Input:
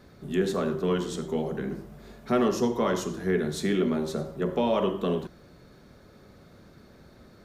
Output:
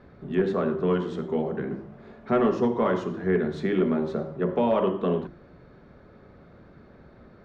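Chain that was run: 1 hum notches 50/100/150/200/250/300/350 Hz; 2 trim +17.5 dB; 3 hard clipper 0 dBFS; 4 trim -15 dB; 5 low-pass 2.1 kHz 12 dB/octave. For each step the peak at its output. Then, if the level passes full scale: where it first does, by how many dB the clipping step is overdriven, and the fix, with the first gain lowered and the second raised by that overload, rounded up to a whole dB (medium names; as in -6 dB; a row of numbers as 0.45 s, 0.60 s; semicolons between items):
-13.5 dBFS, +4.0 dBFS, 0.0 dBFS, -15.0 dBFS, -14.5 dBFS; step 2, 4.0 dB; step 2 +13.5 dB, step 4 -11 dB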